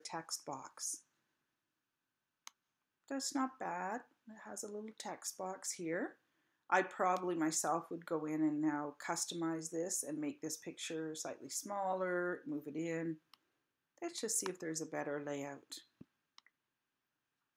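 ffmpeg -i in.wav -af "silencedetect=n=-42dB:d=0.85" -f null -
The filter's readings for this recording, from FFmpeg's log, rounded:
silence_start: 0.96
silence_end: 2.47 | silence_duration: 1.51
silence_start: 16.39
silence_end: 17.56 | silence_duration: 1.18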